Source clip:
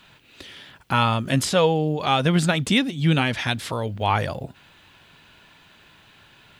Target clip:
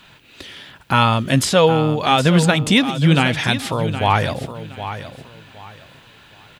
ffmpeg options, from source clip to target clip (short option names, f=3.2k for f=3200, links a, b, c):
-af "aecho=1:1:767|1534|2301:0.266|0.0692|0.018,volume=5dB"